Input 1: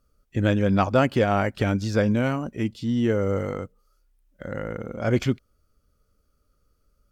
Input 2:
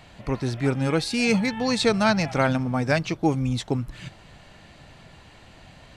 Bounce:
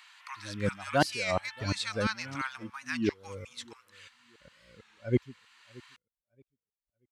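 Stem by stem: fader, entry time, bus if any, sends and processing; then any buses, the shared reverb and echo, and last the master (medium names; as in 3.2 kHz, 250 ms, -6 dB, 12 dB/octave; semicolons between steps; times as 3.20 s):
+1.5 dB, 0.00 s, no send, echo send -23.5 dB, expander on every frequency bin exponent 2; sawtooth tremolo in dB swelling 2.9 Hz, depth 37 dB
-1.5 dB, 0.00 s, no send, no echo send, steep high-pass 1 kHz 48 dB/octave; auto duck -7 dB, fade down 1.45 s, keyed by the first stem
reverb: none
echo: feedback delay 628 ms, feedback 25%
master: high-pass 63 Hz; warped record 33 1/3 rpm, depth 160 cents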